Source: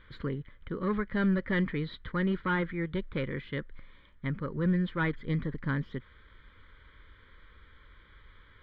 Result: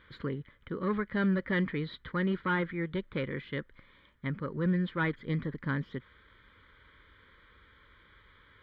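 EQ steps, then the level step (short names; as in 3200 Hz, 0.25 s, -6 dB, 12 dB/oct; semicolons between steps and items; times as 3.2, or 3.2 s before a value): HPF 110 Hz 6 dB/oct; 0.0 dB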